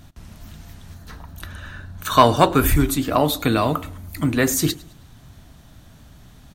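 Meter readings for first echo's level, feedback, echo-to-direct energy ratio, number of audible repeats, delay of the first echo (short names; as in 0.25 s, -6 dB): -22.5 dB, 40%, -22.0 dB, 2, 0.106 s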